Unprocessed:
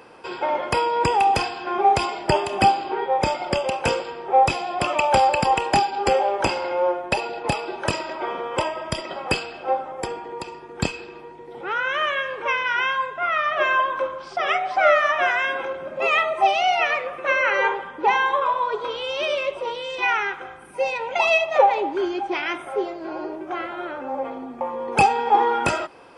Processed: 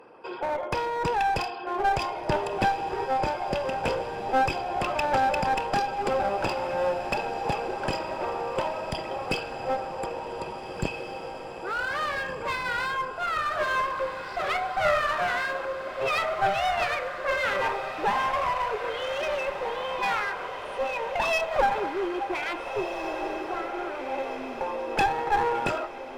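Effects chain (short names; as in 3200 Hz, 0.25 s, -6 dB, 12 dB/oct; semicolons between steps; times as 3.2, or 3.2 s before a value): formant sharpening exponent 1.5; one-sided clip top -24 dBFS; diffused feedback echo 1.715 s, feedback 59%, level -9 dB; gain -4 dB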